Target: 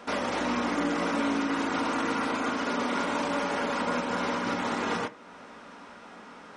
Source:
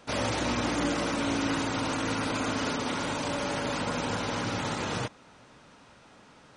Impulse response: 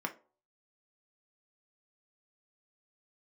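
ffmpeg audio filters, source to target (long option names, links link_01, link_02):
-filter_complex "[0:a]alimiter=level_in=3dB:limit=-24dB:level=0:latency=1:release=345,volume=-3dB,asplit=2[link_01][link_02];[1:a]atrim=start_sample=2205,lowpass=6200[link_03];[link_02][link_03]afir=irnorm=-1:irlink=0,volume=-0.5dB[link_04];[link_01][link_04]amix=inputs=2:normalize=0,volume=1.5dB"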